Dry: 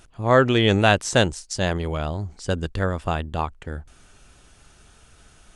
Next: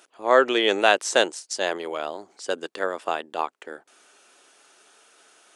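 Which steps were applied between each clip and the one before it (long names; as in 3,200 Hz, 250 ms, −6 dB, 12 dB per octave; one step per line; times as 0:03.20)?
high-pass filter 340 Hz 24 dB per octave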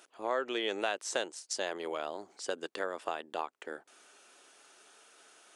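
downward compressor 3 to 1, threshold −29 dBFS, peak gain reduction 13.5 dB
level −3.5 dB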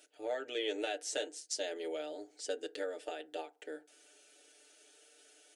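phaser with its sweep stopped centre 440 Hz, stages 4
comb filter 6.7 ms, depth 82%
feedback delay network reverb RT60 0.32 s, low-frequency decay 0.95×, high-frequency decay 0.45×, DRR 12.5 dB
level −3.5 dB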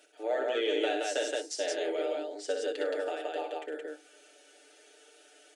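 Bessel high-pass filter 300 Hz, order 8
high-shelf EQ 3,400 Hz −10 dB
on a send: loudspeakers that aren't time-aligned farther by 21 metres −6 dB, 35 metres −12 dB, 59 metres −2 dB
on the sum: level +6.5 dB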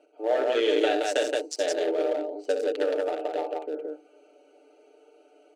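adaptive Wiener filter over 25 samples
level +7 dB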